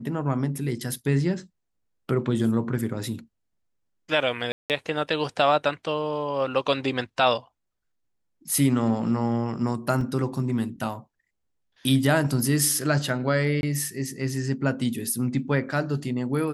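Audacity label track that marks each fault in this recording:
4.520000	4.700000	drop-out 178 ms
10.010000	10.010000	drop-out 2.5 ms
13.610000	13.630000	drop-out 21 ms

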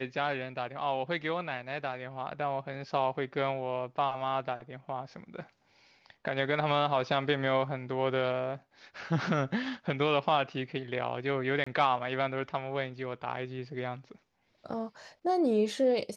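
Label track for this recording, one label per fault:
11.640000	11.660000	drop-out 25 ms

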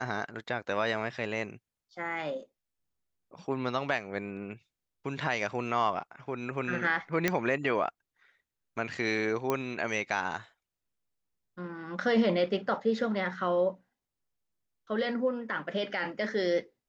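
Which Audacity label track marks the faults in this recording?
7.280000	7.280000	click −11 dBFS
9.500000	9.500000	click −15 dBFS

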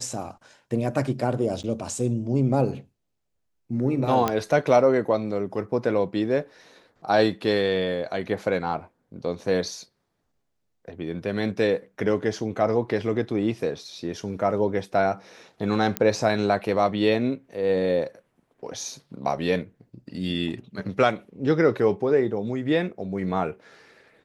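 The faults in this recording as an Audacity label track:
1.630000	1.640000	drop-out 8.7 ms
4.280000	4.280000	click −9 dBFS
15.970000	15.970000	click −8 dBFS

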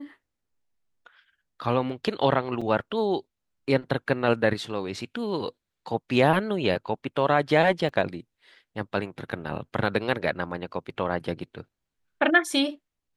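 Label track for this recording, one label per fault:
2.610000	2.620000	drop-out 5 ms
7.890000	7.890000	drop-out 2.6 ms

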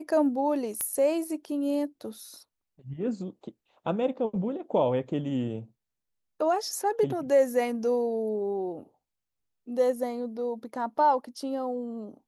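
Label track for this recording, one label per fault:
0.810000	0.810000	click −16 dBFS

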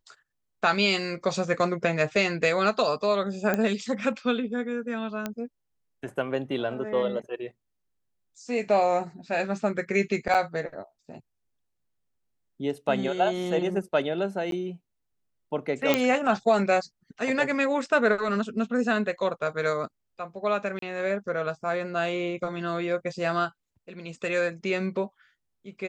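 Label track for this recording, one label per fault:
3.540000	3.540000	click −12 dBFS
5.260000	5.260000	click −15 dBFS
10.340000	10.350000	drop-out 6.9 ms
14.510000	14.520000	drop-out 12 ms
15.940000	15.940000	click −6 dBFS
20.790000	20.820000	drop-out 33 ms

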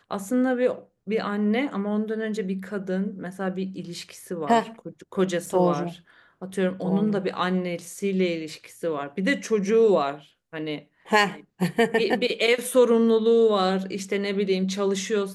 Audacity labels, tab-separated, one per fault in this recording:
5.460000	5.460000	drop-out 5 ms

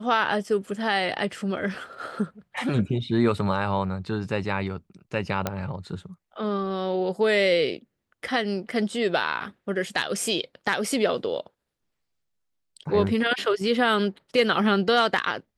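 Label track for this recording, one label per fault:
5.470000	5.470000	click −10 dBFS

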